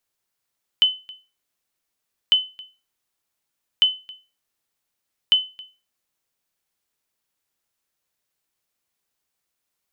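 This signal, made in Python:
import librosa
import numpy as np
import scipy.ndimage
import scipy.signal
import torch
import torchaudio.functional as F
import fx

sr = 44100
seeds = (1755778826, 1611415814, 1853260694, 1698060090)

y = fx.sonar_ping(sr, hz=3030.0, decay_s=0.3, every_s=1.5, pings=4, echo_s=0.27, echo_db=-23.5, level_db=-8.0)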